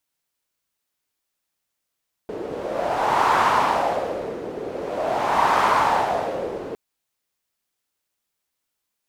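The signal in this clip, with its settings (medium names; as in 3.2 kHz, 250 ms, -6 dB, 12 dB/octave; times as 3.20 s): wind-like swept noise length 4.46 s, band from 430 Hz, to 1 kHz, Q 3.2, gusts 2, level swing 13.5 dB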